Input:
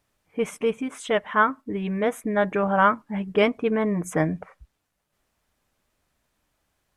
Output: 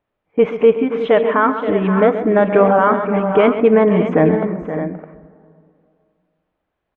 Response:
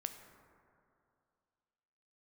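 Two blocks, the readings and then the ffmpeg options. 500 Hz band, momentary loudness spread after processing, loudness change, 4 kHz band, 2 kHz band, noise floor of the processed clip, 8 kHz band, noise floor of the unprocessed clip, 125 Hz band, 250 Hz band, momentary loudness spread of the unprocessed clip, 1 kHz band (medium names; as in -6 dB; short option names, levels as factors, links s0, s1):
+12.0 dB, 11 LU, +9.0 dB, no reading, +3.5 dB, -77 dBFS, under -20 dB, -77 dBFS, +9.0 dB, +10.0 dB, 10 LU, +6.5 dB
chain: -filter_complex "[0:a]agate=range=0.251:threshold=0.00501:ratio=16:detection=peak,lowpass=f=3400:w=0.5412,lowpass=f=3400:w=1.3066,equalizer=f=500:t=o:w=2.5:g=8,alimiter=limit=0.376:level=0:latency=1:release=36,aecho=1:1:131|525|564|612:0.266|0.266|0.133|0.282,asplit=2[s0][s1];[1:a]atrim=start_sample=2205,lowpass=6900[s2];[s1][s2]afir=irnorm=-1:irlink=0,volume=0.841[s3];[s0][s3]amix=inputs=2:normalize=0,volume=1.12"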